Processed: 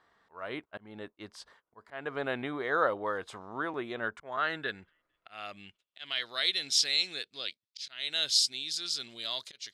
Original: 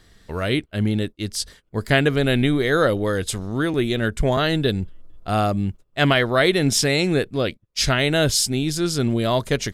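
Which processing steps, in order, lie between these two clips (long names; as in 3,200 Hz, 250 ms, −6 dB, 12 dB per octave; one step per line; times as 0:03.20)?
volume swells 305 ms
band-pass filter sweep 1,000 Hz → 4,200 Hz, 0:04.00–0:06.30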